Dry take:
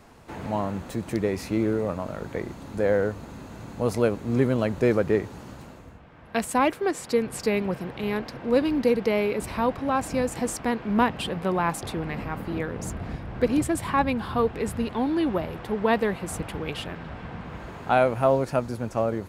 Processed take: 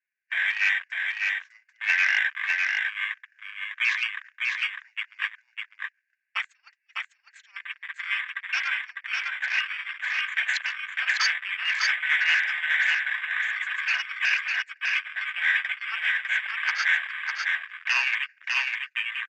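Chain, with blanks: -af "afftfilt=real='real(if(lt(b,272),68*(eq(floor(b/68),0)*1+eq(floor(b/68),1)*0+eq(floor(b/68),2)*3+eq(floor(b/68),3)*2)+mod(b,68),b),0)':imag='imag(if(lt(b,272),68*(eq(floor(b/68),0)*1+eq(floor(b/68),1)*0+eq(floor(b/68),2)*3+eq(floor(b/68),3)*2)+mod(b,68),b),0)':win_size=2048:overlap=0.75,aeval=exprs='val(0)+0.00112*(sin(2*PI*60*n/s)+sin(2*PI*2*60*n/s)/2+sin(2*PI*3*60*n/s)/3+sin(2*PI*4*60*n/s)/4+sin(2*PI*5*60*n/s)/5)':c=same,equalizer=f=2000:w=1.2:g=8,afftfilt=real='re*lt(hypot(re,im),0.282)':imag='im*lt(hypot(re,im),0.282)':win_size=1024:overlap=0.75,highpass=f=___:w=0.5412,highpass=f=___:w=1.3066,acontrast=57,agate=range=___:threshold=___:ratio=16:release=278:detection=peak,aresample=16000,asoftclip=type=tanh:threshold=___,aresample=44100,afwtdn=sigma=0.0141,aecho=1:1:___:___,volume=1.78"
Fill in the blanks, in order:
1300, 1300, 0.0126, 0.0708, 0.106, 602, 0.668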